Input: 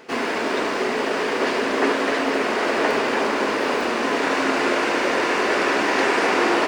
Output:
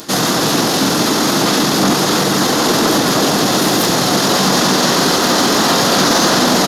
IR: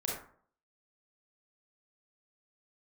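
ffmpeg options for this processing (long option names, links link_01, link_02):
-filter_complex "[0:a]asplit=2[link_01][link_02];[link_02]alimiter=limit=-17dB:level=0:latency=1:release=123,volume=-2dB[link_03];[link_01][link_03]amix=inputs=2:normalize=0,asetrate=31183,aresample=44100,atempo=1.41421,aexciter=amount=11.3:drive=4.9:freq=4100,asplit=2[link_04][link_05];[link_05]asetrate=33038,aresample=44100,atempo=1.33484,volume=-5dB[link_06];[link_04][link_06]amix=inputs=2:normalize=0,acontrast=82,volume=-3dB"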